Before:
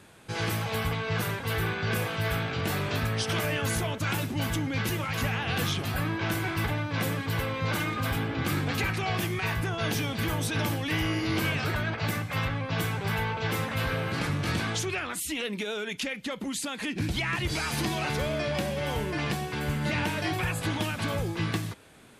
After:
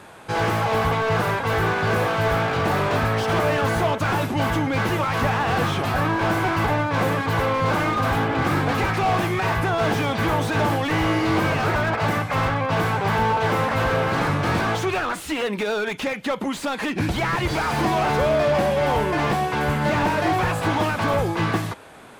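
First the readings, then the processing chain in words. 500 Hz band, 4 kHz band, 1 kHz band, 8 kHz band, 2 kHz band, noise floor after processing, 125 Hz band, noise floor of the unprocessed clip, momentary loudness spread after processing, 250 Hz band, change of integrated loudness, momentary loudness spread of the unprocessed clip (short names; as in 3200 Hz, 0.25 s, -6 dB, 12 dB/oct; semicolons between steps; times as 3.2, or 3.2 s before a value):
+11.0 dB, +2.5 dB, +13.0 dB, -0.5 dB, +6.5 dB, -34 dBFS, +5.0 dB, -38 dBFS, 4 LU, +7.0 dB, +7.5 dB, 3 LU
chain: bell 870 Hz +10.5 dB 2.1 oct; slew limiter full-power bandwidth 68 Hz; gain +4.5 dB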